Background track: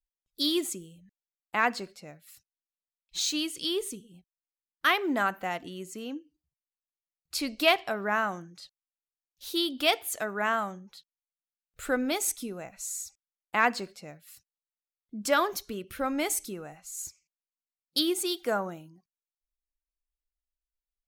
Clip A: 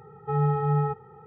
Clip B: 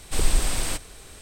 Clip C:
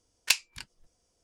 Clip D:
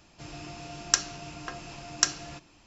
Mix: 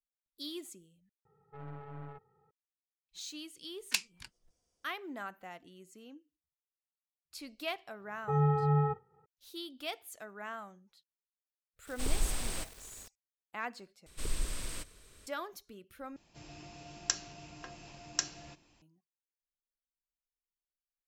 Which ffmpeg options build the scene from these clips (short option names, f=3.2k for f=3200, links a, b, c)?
-filter_complex "[1:a]asplit=2[a][b];[2:a]asplit=2[c][d];[0:a]volume=-15dB[e];[a]aeval=exprs='(tanh(15.8*val(0)+0.75)-tanh(0.75))/15.8':c=same[f];[b]agate=range=-33dB:threshold=-40dB:ratio=3:release=100:detection=peak[g];[c]acrusher=bits=6:mix=0:aa=0.000001[h];[d]equalizer=f=780:w=5.4:g=-12[i];[4:a]equalizer=f=1.3k:t=o:w=0.36:g=-5[j];[e]asplit=4[k][l][m][n];[k]atrim=end=1.254[o];[f]atrim=end=1.26,asetpts=PTS-STARTPTS,volume=-17.5dB[p];[l]atrim=start=2.506:end=14.064[q];[i]atrim=end=1.21,asetpts=PTS-STARTPTS,volume=-13.5dB[r];[m]atrim=start=15.266:end=16.164[s];[j]atrim=end=2.66,asetpts=PTS-STARTPTS,volume=-8.5dB[t];[n]atrim=start=18.816[u];[3:a]atrim=end=1.23,asetpts=PTS-STARTPTS,volume=-7.5dB,afade=t=in:d=0.004:c=hsin,afade=t=out:st=1.226:d=0.004:c=hsin,adelay=3640[v];[g]atrim=end=1.26,asetpts=PTS-STARTPTS,volume=-4dB,afade=t=in:d=0.004:c=hsin,afade=t=out:st=1.256:d=0.004:c=hsin,adelay=8000[w];[h]atrim=end=1.21,asetpts=PTS-STARTPTS,volume=-10.5dB,afade=t=in:d=0.004:c=hsin,afade=t=out:st=1.206:d=0.004:c=hsin,adelay=11870[x];[o][p]acrossfade=d=0.004:c1=hsin:c2=hsin[y];[y][q]acrossfade=d=0.004:c1=hsin:c2=hsin[z];[z][r]acrossfade=d=0.004:c1=hsin:c2=hsin[aa];[aa][s]acrossfade=d=0.004:c1=hsin:c2=hsin[ab];[ab][t]acrossfade=d=0.004:c1=hsin:c2=hsin[ac];[ac][u]acrossfade=d=0.004:c1=hsin:c2=hsin[ad];[ad][v][w][x]amix=inputs=4:normalize=0"